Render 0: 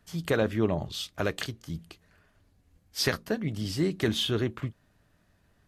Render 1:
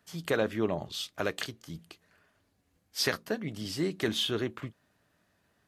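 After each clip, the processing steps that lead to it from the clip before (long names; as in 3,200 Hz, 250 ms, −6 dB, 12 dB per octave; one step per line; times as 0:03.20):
high-pass filter 250 Hz 6 dB per octave
level −1 dB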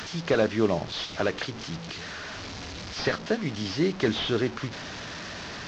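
linear delta modulator 32 kbit/s, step −39 dBFS
one half of a high-frequency compander encoder only
level +6 dB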